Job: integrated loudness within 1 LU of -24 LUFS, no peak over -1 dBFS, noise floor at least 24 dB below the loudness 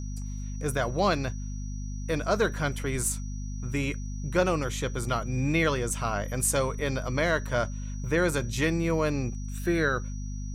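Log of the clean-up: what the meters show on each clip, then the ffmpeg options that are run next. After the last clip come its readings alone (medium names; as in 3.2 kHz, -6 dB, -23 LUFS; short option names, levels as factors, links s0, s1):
hum 50 Hz; highest harmonic 250 Hz; hum level -32 dBFS; steady tone 5.8 kHz; tone level -49 dBFS; loudness -28.5 LUFS; peak level -11.0 dBFS; loudness target -24.0 LUFS
-> -af "bandreject=f=50:t=h:w=6,bandreject=f=100:t=h:w=6,bandreject=f=150:t=h:w=6,bandreject=f=200:t=h:w=6,bandreject=f=250:t=h:w=6"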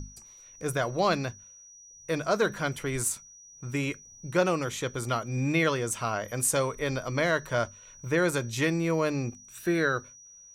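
hum not found; steady tone 5.8 kHz; tone level -49 dBFS
-> -af "bandreject=f=5800:w=30"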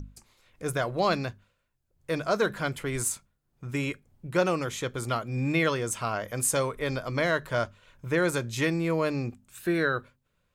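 steady tone not found; loudness -29.0 LUFS; peak level -12.5 dBFS; loudness target -24.0 LUFS
-> -af "volume=1.78"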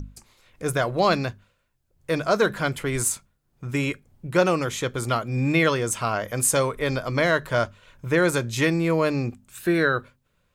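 loudness -24.0 LUFS; peak level -7.5 dBFS; noise floor -70 dBFS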